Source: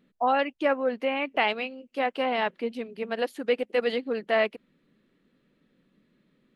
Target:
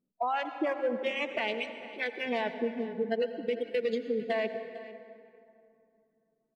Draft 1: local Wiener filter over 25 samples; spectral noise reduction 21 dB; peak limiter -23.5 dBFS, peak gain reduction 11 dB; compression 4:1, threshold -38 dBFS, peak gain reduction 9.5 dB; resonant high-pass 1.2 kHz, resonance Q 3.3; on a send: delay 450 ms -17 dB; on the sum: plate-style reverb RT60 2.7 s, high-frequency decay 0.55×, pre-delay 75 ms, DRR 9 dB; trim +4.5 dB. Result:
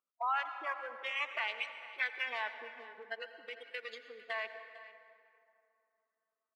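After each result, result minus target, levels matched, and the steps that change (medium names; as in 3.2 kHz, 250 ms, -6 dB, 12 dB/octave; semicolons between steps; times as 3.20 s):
compression: peak gain reduction +5 dB; 1 kHz band +2.5 dB
change: compression 4:1, threshold -31 dBFS, peak gain reduction 4.5 dB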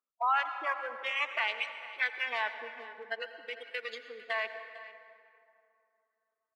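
1 kHz band +3.0 dB
remove: resonant high-pass 1.2 kHz, resonance Q 3.3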